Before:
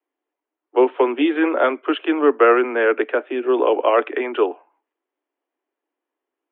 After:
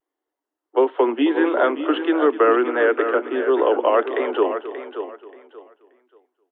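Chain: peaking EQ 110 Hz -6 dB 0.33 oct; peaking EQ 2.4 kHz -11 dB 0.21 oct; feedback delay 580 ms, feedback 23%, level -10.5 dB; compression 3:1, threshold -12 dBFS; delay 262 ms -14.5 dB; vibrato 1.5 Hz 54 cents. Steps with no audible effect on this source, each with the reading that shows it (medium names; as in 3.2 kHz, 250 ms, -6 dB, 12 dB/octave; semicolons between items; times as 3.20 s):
peaking EQ 110 Hz: input has nothing below 230 Hz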